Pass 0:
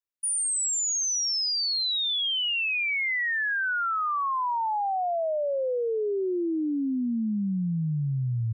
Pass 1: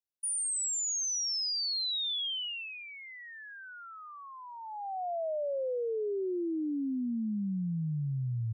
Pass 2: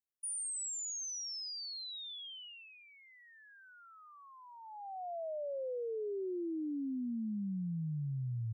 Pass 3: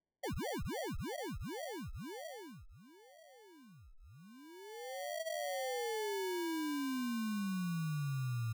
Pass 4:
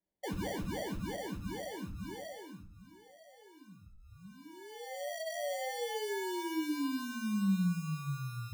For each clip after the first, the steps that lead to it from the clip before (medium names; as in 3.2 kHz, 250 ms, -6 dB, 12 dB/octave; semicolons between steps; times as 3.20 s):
high-order bell 1.5 kHz -14.5 dB; trim -5.5 dB
peaking EQ 2.5 kHz -9.5 dB 2.4 oct; trim -4.5 dB
sample-and-hold 34×
reverberation RT60 0.45 s, pre-delay 5 ms, DRR 3.5 dB